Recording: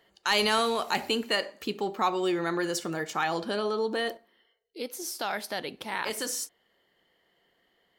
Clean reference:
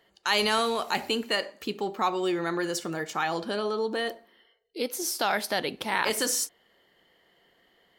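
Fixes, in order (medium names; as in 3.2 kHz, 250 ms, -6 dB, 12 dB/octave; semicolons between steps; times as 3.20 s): clip repair -14.5 dBFS; gain correction +5.5 dB, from 4.17 s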